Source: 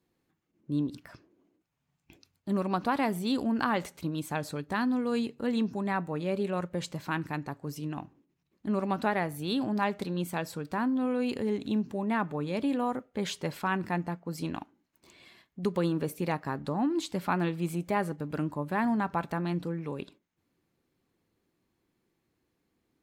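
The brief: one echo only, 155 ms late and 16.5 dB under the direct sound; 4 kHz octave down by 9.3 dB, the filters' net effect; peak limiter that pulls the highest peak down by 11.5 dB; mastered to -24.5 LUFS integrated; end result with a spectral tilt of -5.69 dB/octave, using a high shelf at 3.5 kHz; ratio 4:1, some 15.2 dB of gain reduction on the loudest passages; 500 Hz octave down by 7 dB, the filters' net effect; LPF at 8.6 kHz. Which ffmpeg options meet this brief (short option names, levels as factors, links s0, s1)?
-af "lowpass=8600,equalizer=f=500:t=o:g=-9,highshelf=f=3500:g=-7,equalizer=f=4000:t=o:g=-7,acompressor=threshold=0.00501:ratio=4,alimiter=level_in=9.44:limit=0.0631:level=0:latency=1,volume=0.106,aecho=1:1:155:0.15,volume=25.1"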